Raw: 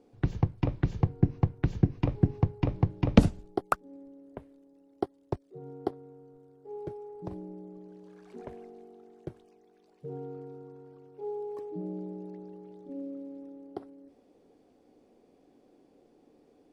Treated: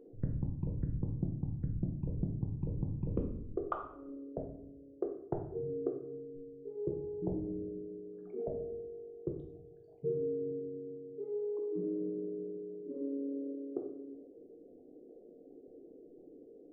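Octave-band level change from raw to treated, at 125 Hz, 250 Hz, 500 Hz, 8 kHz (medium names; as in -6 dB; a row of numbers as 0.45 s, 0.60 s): -8.5 dB, -6.5 dB, 0.0 dB, under -20 dB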